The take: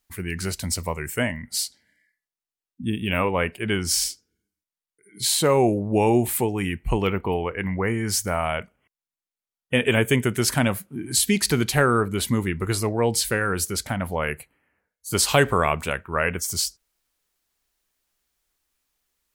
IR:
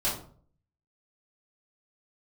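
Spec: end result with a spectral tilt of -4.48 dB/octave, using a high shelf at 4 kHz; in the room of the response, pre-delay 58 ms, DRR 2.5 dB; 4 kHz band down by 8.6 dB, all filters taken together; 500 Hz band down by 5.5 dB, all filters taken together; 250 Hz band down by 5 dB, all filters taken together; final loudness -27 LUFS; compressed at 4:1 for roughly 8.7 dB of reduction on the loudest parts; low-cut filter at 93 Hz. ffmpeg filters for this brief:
-filter_complex "[0:a]highpass=93,equalizer=f=250:t=o:g=-5,equalizer=f=500:t=o:g=-5,highshelf=f=4000:g=-8,equalizer=f=4000:t=o:g=-6,acompressor=threshold=0.0398:ratio=4,asplit=2[s0][s1];[1:a]atrim=start_sample=2205,adelay=58[s2];[s1][s2]afir=irnorm=-1:irlink=0,volume=0.282[s3];[s0][s3]amix=inputs=2:normalize=0,volume=1.58"

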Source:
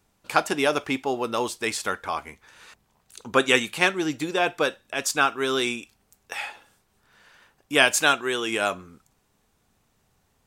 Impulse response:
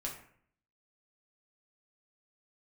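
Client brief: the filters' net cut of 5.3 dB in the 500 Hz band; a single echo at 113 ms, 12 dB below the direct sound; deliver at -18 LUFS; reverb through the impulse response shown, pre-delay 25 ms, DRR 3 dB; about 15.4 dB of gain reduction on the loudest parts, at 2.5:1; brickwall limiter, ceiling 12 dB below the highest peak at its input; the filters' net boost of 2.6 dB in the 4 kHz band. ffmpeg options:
-filter_complex "[0:a]equalizer=f=500:t=o:g=-7,equalizer=f=4000:t=o:g=3.5,acompressor=threshold=0.0141:ratio=2.5,alimiter=level_in=1.33:limit=0.0631:level=0:latency=1,volume=0.75,aecho=1:1:113:0.251,asplit=2[s0][s1];[1:a]atrim=start_sample=2205,adelay=25[s2];[s1][s2]afir=irnorm=-1:irlink=0,volume=0.668[s3];[s0][s3]amix=inputs=2:normalize=0,volume=9.44"

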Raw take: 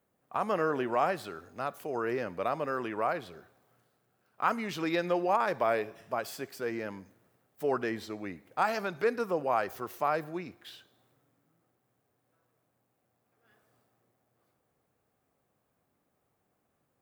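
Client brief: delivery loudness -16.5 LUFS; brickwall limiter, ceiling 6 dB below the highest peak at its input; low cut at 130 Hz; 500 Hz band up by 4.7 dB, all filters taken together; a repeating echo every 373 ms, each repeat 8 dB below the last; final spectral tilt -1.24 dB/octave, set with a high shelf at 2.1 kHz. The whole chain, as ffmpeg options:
-af "highpass=130,equalizer=f=500:t=o:g=6,highshelf=f=2100:g=-4,alimiter=limit=0.126:level=0:latency=1,aecho=1:1:373|746|1119|1492|1865:0.398|0.159|0.0637|0.0255|0.0102,volume=5.01"

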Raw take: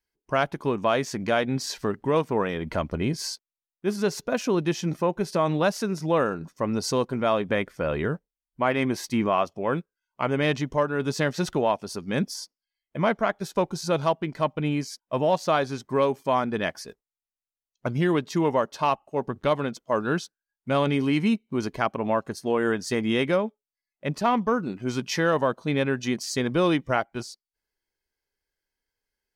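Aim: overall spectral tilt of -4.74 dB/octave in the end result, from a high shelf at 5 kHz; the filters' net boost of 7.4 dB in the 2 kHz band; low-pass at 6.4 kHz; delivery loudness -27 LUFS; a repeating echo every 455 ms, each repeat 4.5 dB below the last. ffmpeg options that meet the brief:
-af "lowpass=6400,equalizer=f=2000:t=o:g=8.5,highshelf=f=5000:g=7.5,aecho=1:1:455|910|1365|1820|2275|2730|3185|3640|4095:0.596|0.357|0.214|0.129|0.0772|0.0463|0.0278|0.0167|0.01,volume=0.596"

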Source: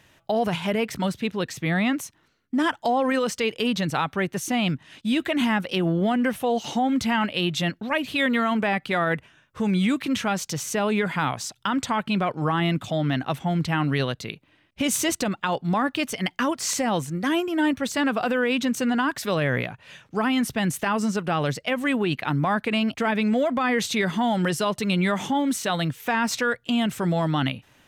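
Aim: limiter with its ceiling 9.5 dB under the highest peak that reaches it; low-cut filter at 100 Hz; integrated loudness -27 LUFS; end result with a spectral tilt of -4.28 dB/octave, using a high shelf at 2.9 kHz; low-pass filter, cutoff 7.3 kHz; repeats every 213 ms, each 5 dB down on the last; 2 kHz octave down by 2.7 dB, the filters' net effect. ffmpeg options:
-af "highpass=100,lowpass=7300,equalizer=f=2000:t=o:g=-6.5,highshelf=f=2900:g=7.5,alimiter=limit=0.112:level=0:latency=1,aecho=1:1:213|426|639|852|1065|1278|1491:0.562|0.315|0.176|0.0988|0.0553|0.031|0.0173,volume=0.944"

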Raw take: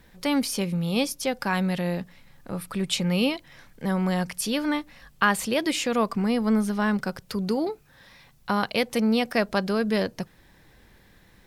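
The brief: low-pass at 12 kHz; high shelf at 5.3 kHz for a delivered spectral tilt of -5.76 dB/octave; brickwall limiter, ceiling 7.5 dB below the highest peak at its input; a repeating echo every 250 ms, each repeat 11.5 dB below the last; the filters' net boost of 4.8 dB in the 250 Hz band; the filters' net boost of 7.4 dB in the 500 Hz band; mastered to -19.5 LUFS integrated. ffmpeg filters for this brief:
-af "lowpass=12000,equalizer=f=250:t=o:g=4.5,equalizer=f=500:t=o:g=7.5,highshelf=f=5300:g=-5.5,alimiter=limit=0.2:level=0:latency=1,aecho=1:1:250|500|750:0.266|0.0718|0.0194,volume=1.68"

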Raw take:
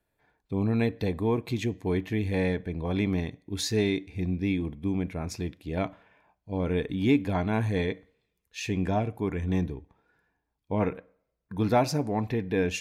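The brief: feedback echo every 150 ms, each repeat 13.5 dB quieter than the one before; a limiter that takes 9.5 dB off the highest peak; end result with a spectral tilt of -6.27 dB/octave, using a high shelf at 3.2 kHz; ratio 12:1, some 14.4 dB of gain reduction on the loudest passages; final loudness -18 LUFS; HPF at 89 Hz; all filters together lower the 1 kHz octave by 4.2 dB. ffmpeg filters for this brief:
-af "highpass=89,equalizer=f=1000:t=o:g=-5.5,highshelf=f=3200:g=-7.5,acompressor=threshold=0.0224:ratio=12,alimiter=level_in=2.37:limit=0.0631:level=0:latency=1,volume=0.422,aecho=1:1:150|300:0.211|0.0444,volume=16.8"

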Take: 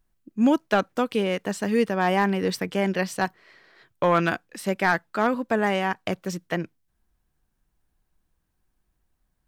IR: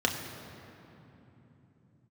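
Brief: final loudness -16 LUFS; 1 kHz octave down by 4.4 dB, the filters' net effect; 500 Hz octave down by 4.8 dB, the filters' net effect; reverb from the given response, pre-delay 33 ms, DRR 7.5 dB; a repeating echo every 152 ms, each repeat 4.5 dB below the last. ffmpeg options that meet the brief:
-filter_complex "[0:a]equalizer=f=500:t=o:g=-5,equalizer=f=1000:t=o:g=-4,aecho=1:1:152|304|456|608|760|912|1064|1216|1368:0.596|0.357|0.214|0.129|0.0772|0.0463|0.0278|0.0167|0.01,asplit=2[s0][s1];[1:a]atrim=start_sample=2205,adelay=33[s2];[s1][s2]afir=irnorm=-1:irlink=0,volume=0.126[s3];[s0][s3]amix=inputs=2:normalize=0,volume=2.66"

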